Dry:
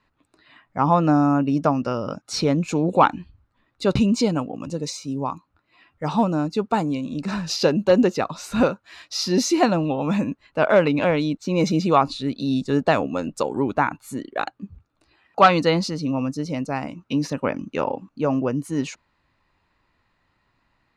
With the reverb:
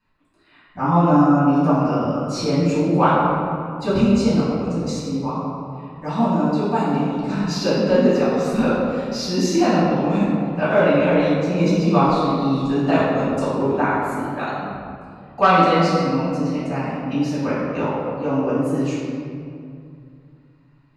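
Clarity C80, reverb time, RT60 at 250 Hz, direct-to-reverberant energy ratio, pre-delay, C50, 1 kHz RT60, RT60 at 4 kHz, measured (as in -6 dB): 0.0 dB, 2.4 s, 3.1 s, -12.0 dB, 4 ms, -2.5 dB, 2.3 s, 1.3 s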